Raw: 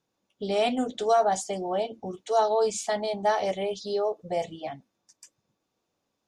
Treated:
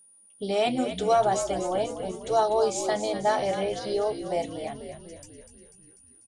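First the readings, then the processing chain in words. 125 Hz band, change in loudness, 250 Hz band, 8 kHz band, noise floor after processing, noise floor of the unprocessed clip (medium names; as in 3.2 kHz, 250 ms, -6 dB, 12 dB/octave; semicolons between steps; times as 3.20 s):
+3.5 dB, +0.5 dB, +1.5 dB, +1.0 dB, -57 dBFS, -81 dBFS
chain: whistle 9.5 kHz -54 dBFS; frequency-shifting echo 246 ms, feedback 59%, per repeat -63 Hz, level -9.5 dB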